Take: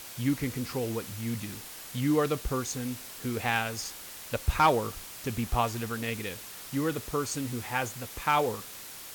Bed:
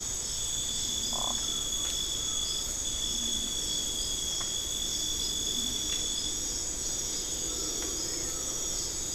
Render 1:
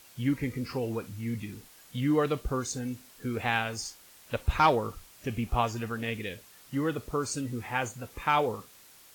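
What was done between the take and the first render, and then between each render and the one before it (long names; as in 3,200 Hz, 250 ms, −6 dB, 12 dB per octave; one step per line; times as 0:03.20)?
noise reduction from a noise print 11 dB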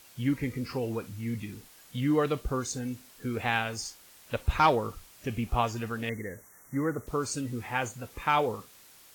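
0:06.09–0:07.07: linear-phase brick-wall band-stop 2,200–5,600 Hz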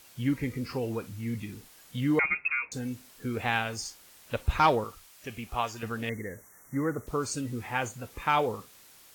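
0:02.19–0:02.72: voice inversion scrambler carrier 2,600 Hz
0:04.84–0:05.83: low-shelf EQ 470 Hz −10.5 dB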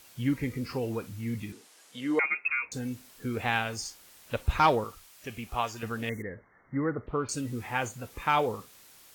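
0:01.52–0:02.46: Chebyshev band-pass filter 360–9,200 Hz
0:06.22–0:07.29: Butterworth low-pass 3,200 Hz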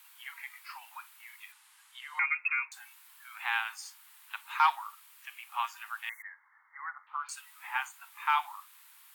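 Butterworth high-pass 860 Hz 72 dB per octave
parametric band 5,800 Hz −10 dB 0.96 octaves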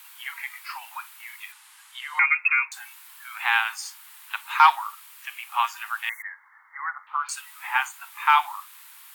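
level +9.5 dB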